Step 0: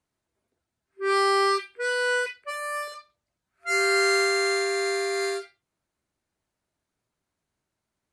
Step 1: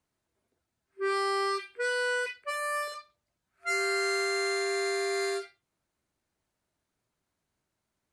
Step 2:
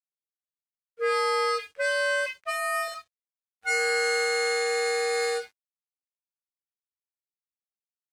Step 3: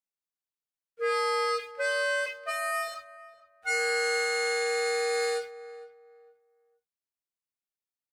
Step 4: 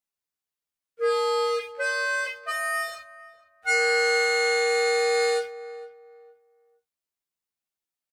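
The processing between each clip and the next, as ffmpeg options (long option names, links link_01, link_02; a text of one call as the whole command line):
ffmpeg -i in.wav -af "acompressor=threshold=-27dB:ratio=4" out.wav
ffmpeg -i in.wav -af "afreqshift=77,aeval=exprs='sgn(val(0))*max(abs(val(0))-0.00112,0)':channel_layout=same,volume=4dB" out.wav
ffmpeg -i in.wav -filter_complex "[0:a]asplit=2[link_01][link_02];[link_02]adelay=459,lowpass=frequency=1200:poles=1,volume=-15dB,asplit=2[link_03][link_04];[link_04]adelay=459,lowpass=frequency=1200:poles=1,volume=0.28,asplit=2[link_05][link_06];[link_06]adelay=459,lowpass=frequency=1200:poles=1,volume=0.28[link_07];[link_01][link_03][link_05][link_07]amix=inputs=4:normalize=0,volume=-2.5dB" out.wav
ffmpeg -i in.wav -filter_complex "[0:a]asplit=2[link_01][link_02];[link_02]adelay=13,volume=-2dB[link_03];[link_01][link_03]amix=inputs=2:normalize=0,volume=1dB" out.wav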